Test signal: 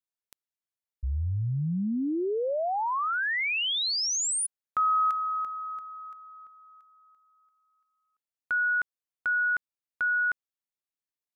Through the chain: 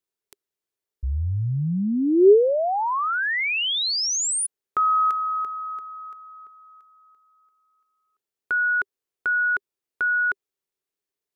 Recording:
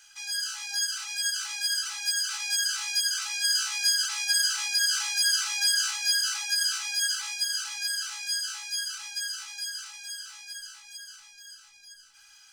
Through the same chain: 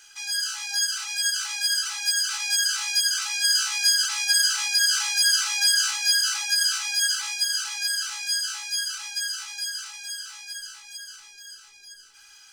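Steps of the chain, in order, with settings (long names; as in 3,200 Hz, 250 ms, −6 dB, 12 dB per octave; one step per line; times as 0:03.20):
parametric band 400 Hz +14 dB 0.47 octaves
level +4 dB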